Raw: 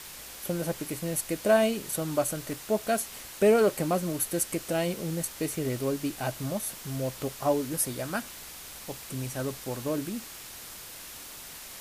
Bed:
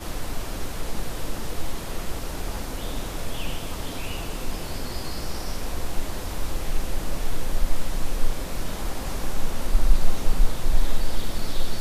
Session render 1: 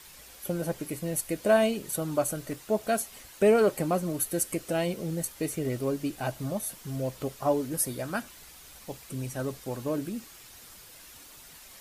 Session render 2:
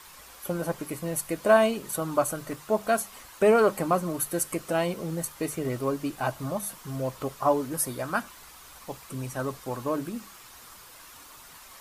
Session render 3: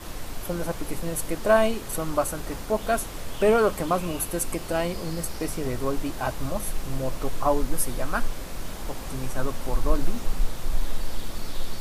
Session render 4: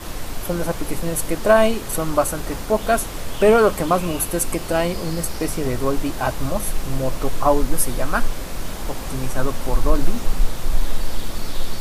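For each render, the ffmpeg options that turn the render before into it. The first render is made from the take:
-af "afftdn=nr=8:nf=-44"
-af "equalizer=f=1.1k:w=1.6:g=10,bandreject=f=50:t=h:w=6,bandreject=f=100:t=h:w=6,bandreject=f=150:t=h:w=6,bandreject=f=200:t=h:w=6"
-filter_complex "[1:a]volume=-5dB[a];[0:a][a]amix=inputs=2:normalize=0"
-af "volume=6dB,alimiter=limit=-3dB:level=0:latency=1"

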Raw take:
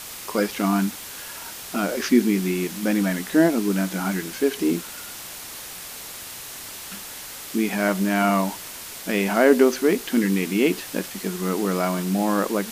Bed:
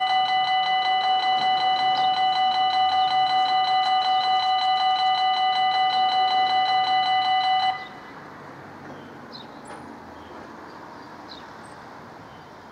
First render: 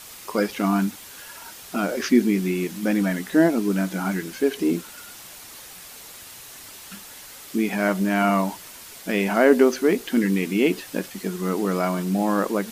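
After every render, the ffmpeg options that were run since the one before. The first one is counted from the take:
-af "afftdn=nr=6:nf=-37"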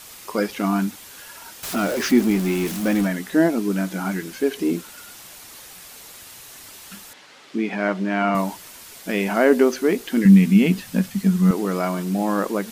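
-filter_complex "[0:a]asettb=1/sr,asplit=3[a][b][c];[a]atrim=end=1.634[d];[b]atrim=start=1.63:end=3.07,asetpts=PTS-STARTPTS,afade=t=in:d=0.004:c=qsin,afade=t=out:st=1.436:d=0.004:c=qsin,aeval=exprs='val(0)+0.5*0.0473*sgn(val(0))':c=same[e];[c]atrim=start=3.066[f];[d][e]acrossfade=d=0.004:c1=hsin:c2=qsin[g];[g][f]acrossfade=d=0.004:c1=qsin:c2=hsin,asettb=1/sr,asplit=3[h][i][j];[h]atrim=end=7.134[k];[i]atrim=start=7.13:end=8.35,asetpts=PTS-STARTPTS,afade=t=in:d=0.004:c=qsin,afade=t=out:st=1.216:d=0.004:c=qsin,highpass=180,lowpass=3.9k[l];[j]atrim=start=8.346[m];[k][l]acrossfade=d=0.004:c1=hsin:c2=qsin[n];[n][m]acrossfade=d=0.004:c1=qsin:c2=hsin,asettb=1/sr,asplit=3[o][p][q];[o]atrim=end=10.254[r];[p]atrim=start=10.25:end=11.51,asetpts=PTS-STARTPTS,afade=t=in:d=0.004:c=qsin,afade=t=out:st=1.256:d=0.004:c=qsin,lowshelf=f=260:t=q:w=3:g=7.5[s];[q]atrim=start=11.506[t];[r][s]acrossfade=d=0.004:c1=hsin:c2=qsin[u];[u][t]acrossfade=d=0.004:c1=qsin:c2=hsin"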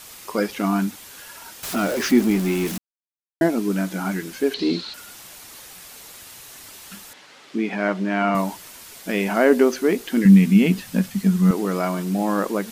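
-filter_complex "[0:a]asettb=1/sr,asplit=3[a][b][c];[a]atrim=end=4.544[d];[b]atrim=start=4.54:end=4.94,asetpts=PTS-STARTPTS,afade=t=in:d=0.004:c=qsin,afade=t=out:st=0.396:d=0.004:c=qsin,lowpass=f=4.2k:t=q:w=12[e];[c]atrim=start=4.936[f];[d][e]acrossfade=d=0.004:c1=hsin:c2=qsin[g];[g][f]acrossfade=d=0.004:c1=qsin:c2=hsin,asplit=3[h][i][j];[h]atrim=end=2.78,asetpts=PTS-STARTPTS,afade=t=out:st=2.776:d=0.004:c=hsin[k];[i]atrim=start=2.78:end=3.41,asetpts=PTS-STARTPTS,volume=0[l];[j]atrim=start=3.41,asetpts=PTS-STARTPTS,afade=t=in:d=0.004:c=hsin[m];[k][l][m]concat=n=3:v=0:a=1"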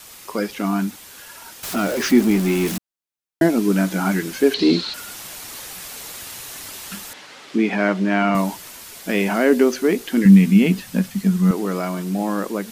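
-filter_complex "[0:a]acrossover=split=410|1700|2600[a][b][c][d];[b]alimiter=limit=-18dB:level=0:latency=1:release=259[e];[a][e][c][d]amix=inputs=4:normalize=0,dynaudnorm=f=240:g=21:m=11.5dB"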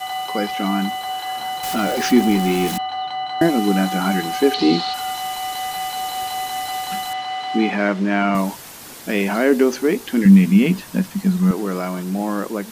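-filter_complex "[1:a]volume=-5dB[a];[0:a][a]amix=inputs=2:normalize=0"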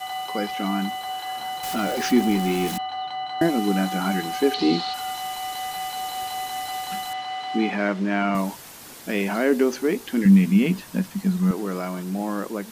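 -af "volume=-4.5dB"

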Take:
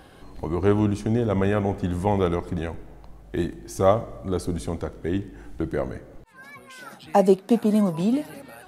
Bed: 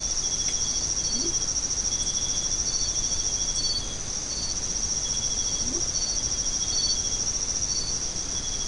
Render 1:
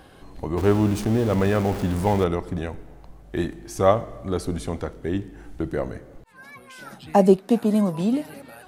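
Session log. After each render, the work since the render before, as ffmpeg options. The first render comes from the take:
-filter_complex "[0:a]asettb=1/sr,asplit=3[a][b][c];[a]atrim=end=0.574[d];[b]atrim=start=0.57:end=2.24,asetpts=PTS-STARTPTS,afade=t=in:d=0.004:c=qsin,afade=t=out:st=1.666:d=0.004:c=qsin,aeval=exprs='val(0)+0.5*0.0376*sgn(val(0))':c=same[e];[c]atrim=start=2.236[f];[d][e]acrossfade=d=0.004:c1=hsin:c2=qsin[g];[g][f]acrossfade=d=0.004:c1=qsin:c2=hsin,asettb=1/sr,asplit=3[h][i][j];[h]atrim=end=3.354[k];[i]atrim=start=3.35:end=4.93,asetpts=PTS-STARTPTS,afade=t=in:d=0.004:c=qsin,afade=t=out:st=1.576:d=0.004:c=qsin,equalizer=f=2k:w=0.59:g=3.5[l];[j]atrim=start=4.926[m];[k][l]acrossfade=d=0.004:c1=hsin:c2=qsin[n];[n][m]acrossfade=d=0.004:c1=qsin:c2=hsin,asettb=1/sr,asplit=3[o][p][q];[o]atrim=end=6.794[r];[p]atrim=start=6.79:end=7.37,asetpts=PTS-STARTPTS,afade=t=in:d=0.004:c=qsin,afade=t=out:st=0.576:d=0.004:c=qsin,lowshelf=f=170:g=10[s];[q]atrim=start=7.366[t];[r][s]acrossfade=d=0.004:c1=hsin:c2=qsin[u];[u][t]acrossfade=d=0.004:c1=qsin:c2=hsin"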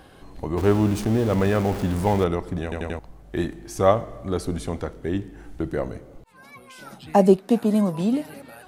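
-filter_complex "[0:a]asettb=1/sr,asplit=3[a][b][c];[a]atrim=end=5.884[d];[b]atrim=start=5.88:end=7.01,asetpts=PTS-STARTPTS,afade=t=in:d=0.004:c=qsin,afade=t=out:st=1.126:d=0.004:c=qsin,equalizer=f=1.7k:t=o:w=0.23:g=-10[e];[c]atrim=start=7.006[f];[d][e]acrossfade=d=0.004:c1=hsin:c2=qsin[g];[g][f]acrossfade=d=0.004:c1=qsin:c2=hsin,asplit=5[h][i][j][k][l];[h]atrim=end=2.722[m];[i]atrim=start=2.628:end=2.722[n];[j]atrim=start=2.628:end=2.722[o];[k]atrim=start=2.628:end=2.722[p];[l]atrim=start=2.988[q];[m][n]acrossfade=d=0.004:c1=hsin:c2=hsin[r];[r][o]acrossfade=d=0.004:c1=hsin:c2=hsin[s];[s][p]acrossfade=d=0.004:c1=hsin:c2=hsin[t];[t][q]acrossfade=d=0.004:c1=hsin:c2=hsin"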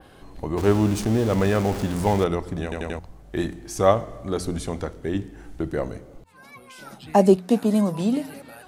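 -af "bandreject=f=89.79:t=h:w=4,bandreject=f=179.58:t=h:w=4,bandreject=f=269.37:t=h:w=4,adynamicequalizer=threshold=0.00447:dfrequency=6600:dqfactor=0.71:tfrequency=6600:tqfactor=0.71:attack=5:release=100:ratio=0.375:range=2:mode=boostabove:tftype=bell"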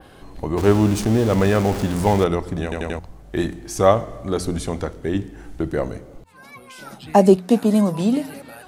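-af "volume=3.5dB,alimiter=limit=-1dB:level=0:latency=1"

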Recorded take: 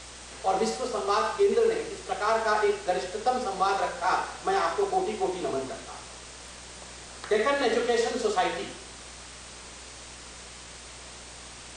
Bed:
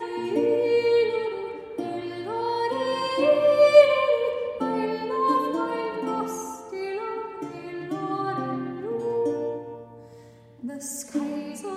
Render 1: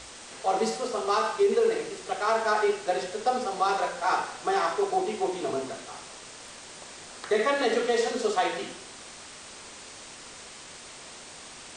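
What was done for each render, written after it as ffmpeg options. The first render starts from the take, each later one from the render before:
-af "bandreject=f=60:t=h:w=4,bandreject=f=120:t=h:w=4,bandreject=f=180:t=h:w=4"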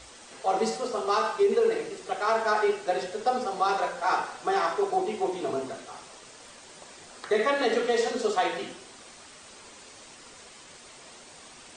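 -af "afftdn=nr=6:nf=-45"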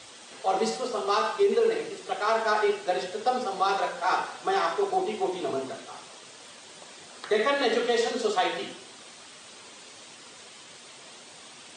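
-af "highpass=f=98:w=0.5412,highpass=f=98:w=1.3066,equalizer=f=3.4k:t=o:w=0.76:g=4.5"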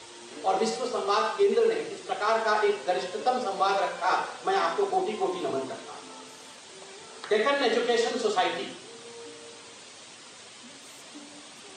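-filter_complex "[1:a]volume=-20.5dB[a];[0:a][a]amix=inputs=2:normalize=0"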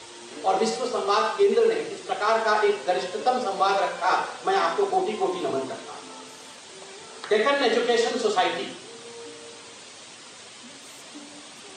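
-af "volume=3dB"

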